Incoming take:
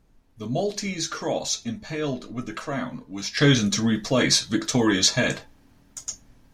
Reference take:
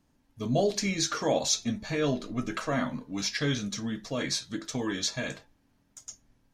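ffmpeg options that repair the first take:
-af "agate=range=-21dB:threshold=-47dB,asetnsamples=n=441:p=0,asendcmd='3.37 volume volume -11dB',volume=0dB"

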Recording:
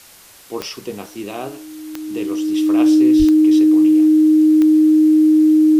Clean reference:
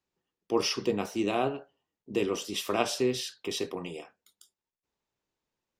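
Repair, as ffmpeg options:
-filter_complex "[0:a]adeclick=t=4,bandreject=f=310:w=30,asplit=3[a][b][c];[a]afade=t=out:st=3.18:d=0.02[d];[b]highpass=f=140:w=0.5412,highpass=f=140:w=1.3066,afade=t=in:st=3.18:d=0.02,afade=t=out:st=3.3:d=0.02[e];[c]afade=t=in:st=3.3:d=0.02[f];[d][e][f]amix=inputs=3:normalize=0,agate=range=-21dB:threshold=-32dB"

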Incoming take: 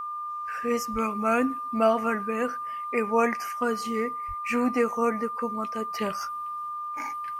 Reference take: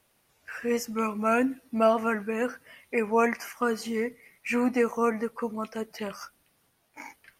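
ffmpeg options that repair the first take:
-filter_complex "[0:a]bandreject=f=1.2k:w=30,asplit=3[a][b][c];[a]afade=t=out:st=0.92:d=0.02[d];[b]highpass=f=140:w=0.5412,highpass=f=140:w=1.3066,afade=t=in:st=0.92:d=0.02,afade=t=out:st=1.04:d=0.02[e];[c]afade=t=in:st=1.04:d=0.02[f];[d][e][f]amix=inputs=3:normalize=0,asplit=3[g][h][i];[g]afade=t=out:st=4.27:d=0.02[j];[h]highpass=f=140:w=0.5412,highpass=f=140:w=1.3066,afade=t=in:st=4.27:d=0.02,afade=t=out:st=4.39:d=0.02[k];[i]afade=t=in:st=4.39:d=0.02[l];[j][k][l]amix=inputs=3:normalize=0,asetnsamples=n=441:p=0,asendcmd='5.93 volume volume -4.5dB',volume=0dB"

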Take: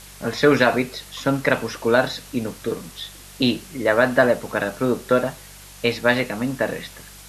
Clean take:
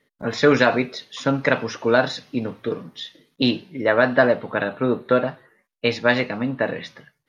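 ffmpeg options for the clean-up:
-af "bandreject=f=48.4:t=h:w=4,bandreject=f=96.8:t=h:w=4,bandreject=f=145.2:t=h:w=4,bandreject=f=193.6:t=h:w=4,afwtdn=0.0079"

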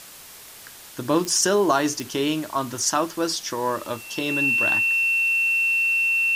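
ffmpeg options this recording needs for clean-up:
-af "adeclick=t=4,bandreject=f=2.7k:w=30,afwtdn=0.0079"

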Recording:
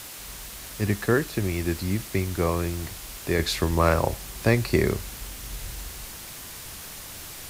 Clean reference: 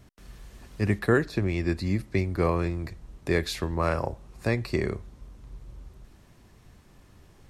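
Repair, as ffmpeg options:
-filter_complex "[0:a]adeclick=t=4,asplit=3[a][b][c];[a]afade=t=out:st=5.62:d=0.02[d];[b]highpass=f=140:w=0.5412,highpass=f=140:w=1.3066,afade=t=in:st=5.62:d=0.02,afade=t=out:st=5.74:d=0.02[e];[c]afade=t=in:st=5.74:d=0.02[f];[d][e][f]amix=inputs=3:normalize=0,afwtdn=0.011,asetnsamples=n=441:p=0,asendcmd='3.39 volume volume -5.5dB',volume=0dB"

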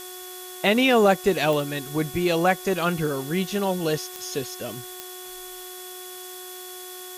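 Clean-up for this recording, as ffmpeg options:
-af "adeclick=t=4,bandreject=f=366.3:t=h:w=4,bandreject=f=732.6:t=h:w=4,bandreject=f=1.0989k:t=h:w=4,bandreject=f=1.4652k:t=h:w=4,bandreject=f=1.8315k:t=h:w=4,bandreject=f=3.4k:w=30,afftdn=nr=29:nf=-39"

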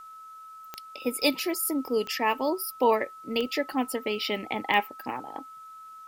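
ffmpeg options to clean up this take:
-af "adeclick=t=4,bandreject=f=1.3k:w=30,agate=range=-21dB:threshold=-38dB"

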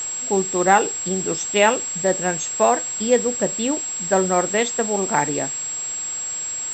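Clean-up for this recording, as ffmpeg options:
-af "bandreject=f=7.6k:w=30,afwtdn=0.016"

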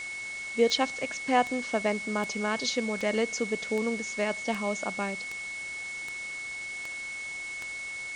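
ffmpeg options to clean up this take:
-af "adeclick=t=4,bandreject=f=2.2k:w=30,afwtdn=0.0063"

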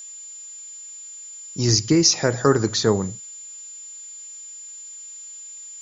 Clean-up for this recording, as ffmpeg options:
-af "bandreject=f=7.1k:w=30,afftdn=nr=27:nf=-39"

